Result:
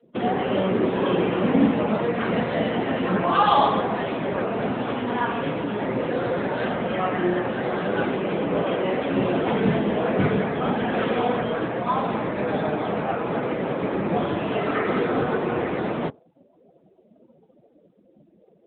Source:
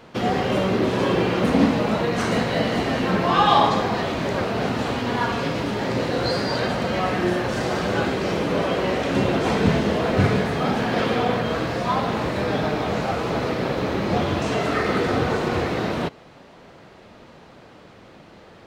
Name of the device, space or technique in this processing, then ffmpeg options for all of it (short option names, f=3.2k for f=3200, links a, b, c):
mobile call with aggressive noise cancelling: -af "highpass=140,afftdn=nr=29:nf=-37" -ar 8000 -c:a libopencore_amrnb -b:a 10200